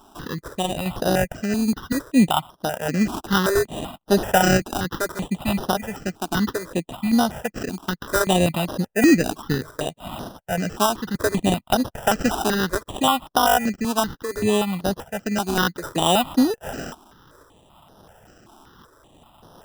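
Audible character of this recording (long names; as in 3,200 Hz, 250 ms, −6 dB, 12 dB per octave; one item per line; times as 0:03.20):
sample-and-hold tremolo
aliases and images of a low sample rate 2,200 Hz, jitter 0%
notches that jump at a steady rate 5.2 Hz 520–7,700 Hz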